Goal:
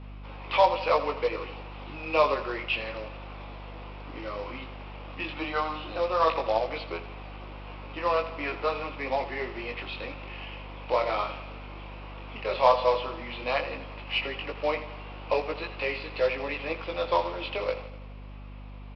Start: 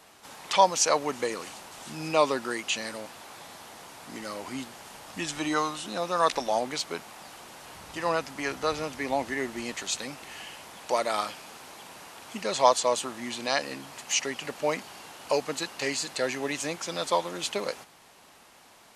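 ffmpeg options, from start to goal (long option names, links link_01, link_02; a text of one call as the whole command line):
ffmpeg -i in.wav -filter_complex "[0:a]acrossover=split=440|1900[link_01][link_02][link_03];[link_01]acompressor=threshold=-46dB:ratio=6[link_04];[link_04][link_02][link_03]amix=inputs=3:normalize=0,highpass=150,equalizer=frequency=210:width_type=q:width=4:gain=-6,equalizer=frequency=320:width_type=q:width=4:gain=8,equalizer=frequency=510:width_type=q:width=4:gain=7,equalizer=frequency=1100:width_type=q:width=4:gain=4,equalizer=frequency=1700:width_type=q:width=4:gain=-6,equalizer=frequency=2500:width_type=q:width=4:gain=7,lowpass=frequency=3200:width=0.5412,lowpass=frequency=3200:width=1.3066,flanger=delay=16.5:depth=7.8:speed=0.13,aresample=11025,acrusher=bits=4:mode=log:mix=0:aa=0.000001,aresample=44100,aeval=exprs='val(0)+0.00708*(sin(2*PI*50*n/s)+sin(2*PI*2*50*n/s)/2+sin(2*PI*3*50*n/s)/3+sin(2*PI*4*50*n/s)/4+sin(2*PI*5*50*n/s)/5)':channel_layout=same,aecho=1:1:83|166|249|332|415|498:0.211|0.12|0.0687|0.0391|0.0223|0.0127,acontrast=46,volume=-4dB" out.wav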